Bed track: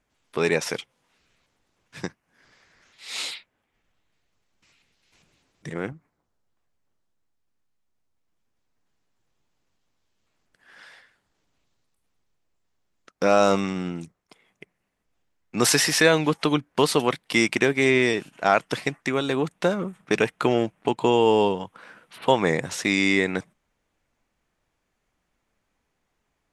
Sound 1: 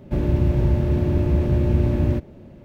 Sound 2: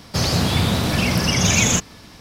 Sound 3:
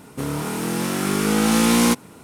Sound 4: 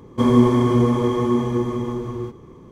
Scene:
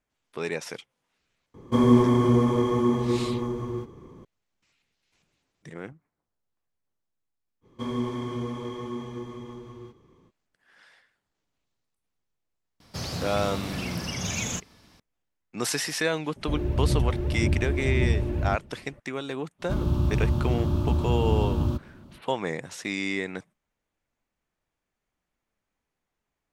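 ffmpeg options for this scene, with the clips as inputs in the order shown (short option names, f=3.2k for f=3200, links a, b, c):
-filter_complex "[4:a]asplit=2[a][b];[1:a]asplit=2[c][d];[0:a]volume=-8.5dB[e];[b]equalizer=f=3.3k:w=0.63:g=7.5[f];[c]aphaser=in_gain=1:out_gain=1:delay=3:decay=0.5:speed=1.8:type=triangular[g];[d]firequalizer=gain_entry='entry(280,0);entry(480,-7);entry(1200,10);entry(1900,-14);entry(3200,7)':delay=0.05:min_phase=1[h];[a]atrim=end=2.71,asetpts=PTS-STARTPTS,volume=-3.5dB,afade=t=in:d=0.004:c=hsin,afade=t=out:st=2.706:d=0.004:c=hsin,adelay=1540[i];[f]atrim=end=2.71,asetpts=PTS-STARTPTS,volume=-15.5dB,afade=t=in:d=0.05,afade=t=out:st=2.66:d=0.05,adelay=7610[j];[2:a]atrim=end=2.2,asetpts=PTS-STARTPTS,volume=-13.5dB,afade=t=in:d=0.004:c=hsin,afade=t=out:st=2.196:d=0.004:c=hsin,adelay=12800[k];[g]atrim=end=2.64,asetpts=PTS-STARTPTS,volume=-8.5dB,afade=t=in:d=0.004:c=hsin,afade=t=out:st=2.636:d=0.004:c=hsin,adelay=721476S[l];[h]atrim=end=2.64,asetpts=PTS-STARTPTS,volume=-5dB,afade=t=in:d=0.05,afade=t=out:st=2.59:d=0.05,adelay=19580[m];[e][i][j][k][l][m]amix=inputs=6:normalize=0"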